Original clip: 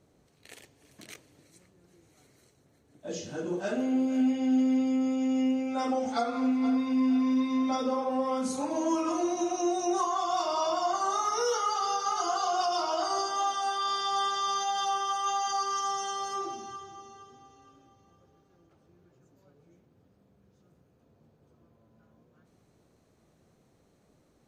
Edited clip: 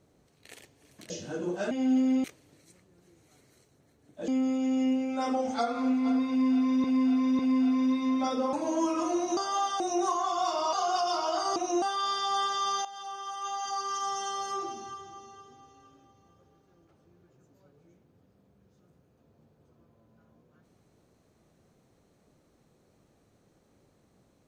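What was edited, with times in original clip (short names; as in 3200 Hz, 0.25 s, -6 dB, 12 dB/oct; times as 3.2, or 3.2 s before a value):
1.1–3.14 move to 4.86
3.75–4.33 cut
6.87–7.42 loop, 3 plays
8.01–8.62 cut
9.46–9.72 swap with 13.21–13.64
10.65–12.38 cut
14.67–16.13 fade in, from -15.5 dB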